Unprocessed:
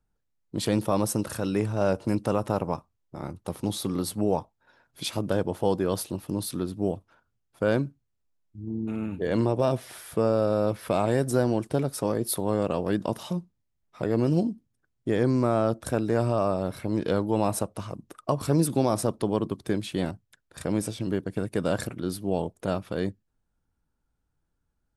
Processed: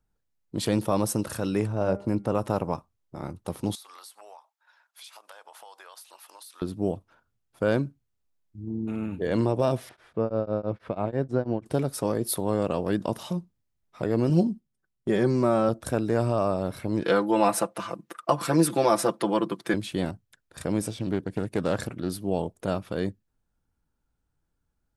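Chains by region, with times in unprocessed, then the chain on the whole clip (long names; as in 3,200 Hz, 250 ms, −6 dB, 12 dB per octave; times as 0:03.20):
0:01.67–0:02.35: high-shelf EQ 2,100 Hz −9.5 dB + hum removal 199.8 Hz, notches 12
0:03.75–0:06.62: high-pass filter 830 Hz 24 dB per octave + downward compressor 10 to 1, threshold −43 dBFS
0:09.89–0:11.66: head-to-tape spacing loss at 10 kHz 29 dB + tremolo along a rectified sine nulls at 6.1 Hz
0:14.29–0:15.69: comb filter 5.3 ms, depth 59% + noise gate −42 dBFS, range −7 dB
0:17.03–0:19.74: high-pass filter 220 Hz + parametric band 1,700 Hz +8.5 dB 1.8 octaves + comb filter 5.9 ms, depth 73%
0:20.89–0:22.10: high-shelf EQ 8,500 Hz −4.5 dB + highs frequency-modulated by the lows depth 0.2 ms
whole clip: no processing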